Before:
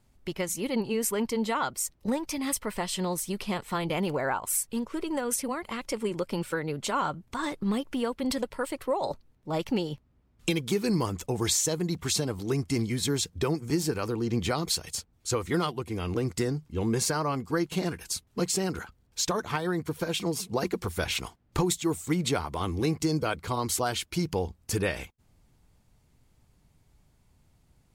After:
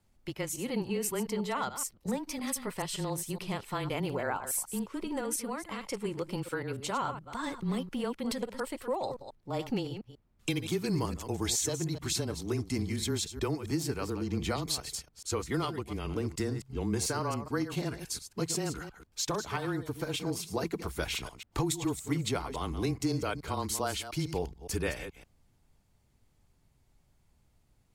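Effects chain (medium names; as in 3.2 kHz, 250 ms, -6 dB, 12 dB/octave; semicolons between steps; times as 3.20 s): chunks repeated in reverse 141 ms, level -10.5 dB; frequency shift -20 Hz; trim -4.5 dB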